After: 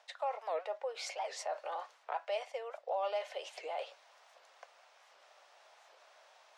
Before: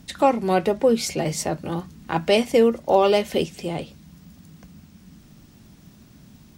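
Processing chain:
reversed playback
downward compressor 6 to 1, threshold −29 dBFS, peak gain reduction 16.5 dB
reversed playback
high-frequency loss of the air 63 metres
brickwall limiter −26.5 dBFS, peak gain reduction 7.5 dB
Butterworth high-pass 580 Hz 48 dB per octave
spectral tilt −3 dB per octave
wow of a warped record 78 rpm, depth 250 cents
level +2.5 dB

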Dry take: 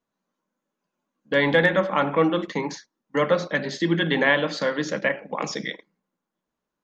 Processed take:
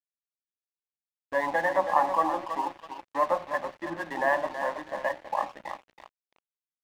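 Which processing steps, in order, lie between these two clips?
spectral magnitudes quantised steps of 15 dB
flat-topped band-pass 720 Hz, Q 0.98
comb filter 1.1 ms, depth 92%
repeating echo 325 ms, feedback 34%, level −8.5 dB
dead-zone distortion −43 dBFS

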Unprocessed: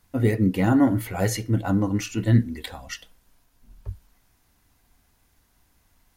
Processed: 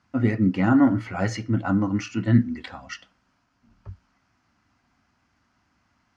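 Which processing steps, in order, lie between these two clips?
loudspeaker in its box 100–5,400 Hz, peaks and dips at 240 Hz +4 dB, 450 Hz −9 dB, 1,300 Hz +7 dB, 3,700 Hz −9 dB

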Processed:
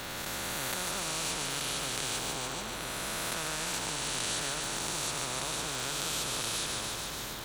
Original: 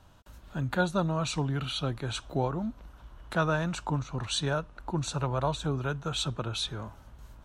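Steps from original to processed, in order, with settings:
peak hold with a rise ahead of every peak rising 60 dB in 1.67 s
in parallel at +3 dB: downward compressor, threshold −34 dBFS, peak gain reduction 13.5 dB
on the sum: echo with a time of its own for lows and highs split 350 Hz, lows 469 ms, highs 146 ms, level −8 dB
surface crackle 360 per second −45 dBFS
every bin compressed towards the loudest bin 4 to 1
level −6 dB

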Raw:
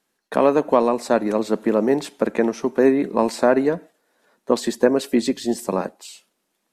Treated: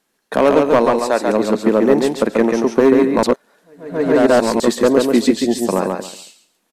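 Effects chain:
0:00.85–0:01.28: parametric band 120 Hz −14.5 dB 2.4 octaves
gain into a clipping stage and back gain 10 dB
repeating echo 138 ms, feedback 21%, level −3.5 dB
0:03.23–0:04.60: reverse
level +4.5 dB

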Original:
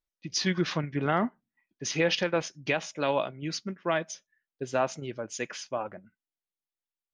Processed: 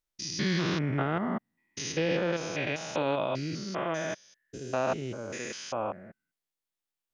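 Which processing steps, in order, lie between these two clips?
spectrum averaged block by block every 200 ms
0:01.92–0:02.33: high-shelf EQ 2,500 Hz −9 dB
brickwall limiter −22.5 dBFS, peak gain reduction 6.5 dB
level +4.5 dB

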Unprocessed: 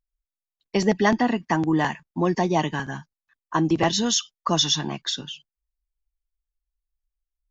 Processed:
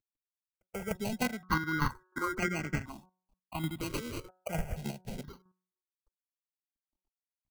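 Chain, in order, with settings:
variable-slope delta modulation 64 kbit/s
decimation without filtering 25×
low-shelf EQ 230 Hz +3.5 dB
hum removal 184.2 Hz, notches 9
square-wave tremolo 3.3 Hz, depth 65%, duty 20%
downward compressor 1.5 to 1, threshold −32 dBFS, peak gain reduction 6.5 dB
0:01.22–0:02.92: flat-topped bell 1,500 Hz +12 dB 1.3 octaves
step-sequenced phaser 2.1 Hz 200–3,800 Hz
level −1.5 dB

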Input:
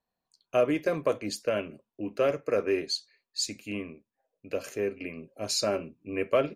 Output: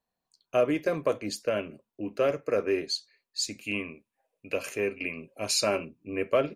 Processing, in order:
0:03.61–0:05.85: graphic EQ with 15 bands 1,000 Hz +5 dB, 2,500 Hz +9 dB, 10,000 Hz +7 dB

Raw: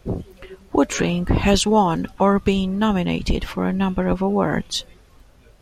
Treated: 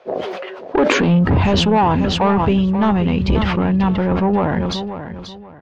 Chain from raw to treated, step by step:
fade-out on the ending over 1.79 s
dynamic equaliser 850 Hz, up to +5 dB, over −31 dBFS, Q 1.5
in parallel at +2 dB: brickwall limiter −13 dBFS, peak gain reduction 11.5 dB
on the sum: high-pass filter sweep 600 Hz → 77 Hz, 0:00.61–0:01.44
soft clipping −8 dBFS, distortion −12 dB
high-frequency loss of the air 230 metres
on a send: repeating echo 535 ms, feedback 24%, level −11 dB
on the sum: level that may fall only so fast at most 26 dB per second
level −1 dB

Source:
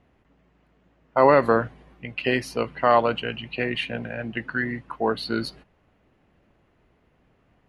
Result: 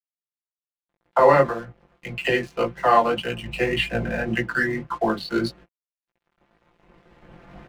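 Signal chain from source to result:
adaptive Wiener filter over 9 samples
camcorder AGC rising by 8.9 dB per second
all-pass dispersion lows, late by 41 ms, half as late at 350 Hz
0:01.46–0:02.25: downward compressor 12 to 1, threshold −26 dBFS, peak gain reduction 12 dB
0:03.42–0:04.23: parametric band 62 Hz +14 dB 0.83 octaves
dead-zone distortion −46.5 dBFS
chorus effect 1.8 Hz, delay 16 ms, depth 6 ms
comb filter 5.8 ms
level +3 dB

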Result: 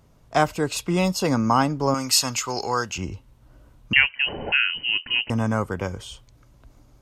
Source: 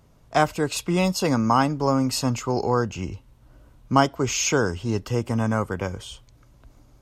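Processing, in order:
0:01.94–0:02.98: tilt shelving filter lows −9.5 dB, about 910 Hz
0:03.93–0:05.30: voice inversion scrambler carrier 3,000 Hz

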